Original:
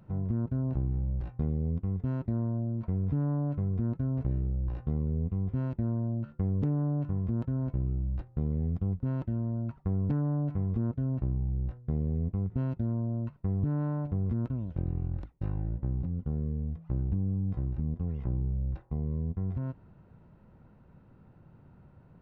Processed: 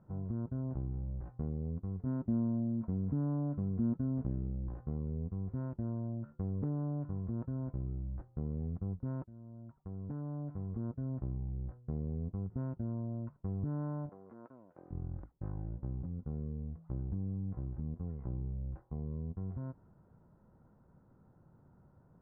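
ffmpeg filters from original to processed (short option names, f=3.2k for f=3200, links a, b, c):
-filter_complex "[0:a]asettb=1/sr,asplit=3[a][b][c];[a]atrim=end=2.064[d];[b]atrim=start=2.06:end=4.74,asetpts=PTS-STARTPTS,afade=t=in:d=0.004:c=qsin,afade=t=out:st=2.676:d=0.004:c=qsin,equalizer=f=230:t=o:w=0.68:g=8.5[e];[c]atrim=start=4.736[f];[d][e]acrossfade=d=0.004:c1=hsin:c2=qsin[g];[g][f]acrossfade=d=0.004:c1=qsin:c2=hsin,asettb=1/sr,asplit=3[h][i][j];[h]atrim=end=14.094[k];[i]atrim=start=14.09:end=14.91,asetpts=PTS-STARTPTS,afade=t=in:d=0.004:c=qsin,afade=t=out:st=0.816:d=0.004:c=qsin,highpass=530[l];[j]atrim=start=14.906[m];[k][l]acrossfade=d=0.004:c1=hsin:c2=qsin[n];[n][m]acrossfade=d=0.004:c1=qsin:c2=hsin,asplit=2[o][p];[o]atrim=end=9.24,asetpts=PTS-STARTPTS,afade=t=out:st=9.236:d=0.004:c=hsin:silence=0.158489[q];[p]atrim=start=9.24,asetpts=PTS-STARTPTS,afade=t=in:d=1.93:silence=0.158489[r];[q][r]concat=n=2:v=0:a=1,lowpass=f=1.5k:w=0.5412,lowpass=f=1.5k:w=1.3066,lowshelf=f=170:g=-4,volume=-5dB"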